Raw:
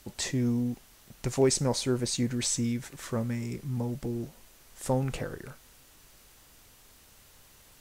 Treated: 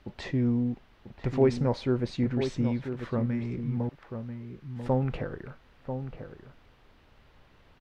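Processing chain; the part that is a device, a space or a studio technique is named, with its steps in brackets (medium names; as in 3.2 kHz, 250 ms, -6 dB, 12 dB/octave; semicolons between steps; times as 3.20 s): 3.89–4.83 s: inverse Chebyshev high-pass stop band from 160 Hz, stop band 80 dB; shout across a valley (distance through air 350 m; echo from a far wall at 170 m, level -8 dB); trim +2 dB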